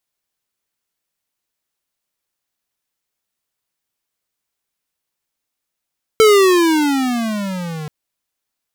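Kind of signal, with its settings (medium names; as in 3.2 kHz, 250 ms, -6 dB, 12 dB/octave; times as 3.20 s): gliding synth tone square, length 1.68 s, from 446 Hz, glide -19 st, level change -19 dB, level -8 dB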